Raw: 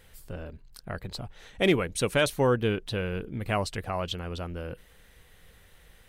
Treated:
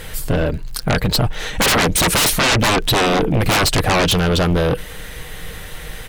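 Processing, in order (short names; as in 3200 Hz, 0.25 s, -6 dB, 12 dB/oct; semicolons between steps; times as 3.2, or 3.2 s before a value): comb 6.5 ms, depth 30%; crackle 54/s -54 dBFS; sine folder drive 20 dB, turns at -11.5 dBFS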